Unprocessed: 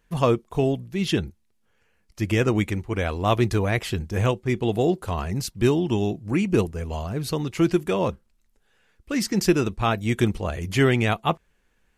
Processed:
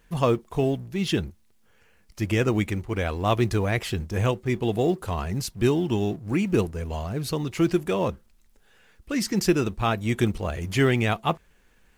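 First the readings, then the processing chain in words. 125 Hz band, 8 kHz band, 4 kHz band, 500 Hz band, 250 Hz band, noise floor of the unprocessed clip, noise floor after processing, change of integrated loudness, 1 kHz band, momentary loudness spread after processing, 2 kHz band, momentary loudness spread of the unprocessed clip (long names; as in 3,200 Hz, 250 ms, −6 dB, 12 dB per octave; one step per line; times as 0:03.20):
−1.5 dB, −1.0 dB, −1.5 dB, −1.5 dB, −1.5 dB, −67 dBFS, −60 dBFS, −1.5 dB, −1.5 dB, 7 LU, −1.5 dB, 7 LU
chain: mu-law and A-law mismatch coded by mu
level −2 dB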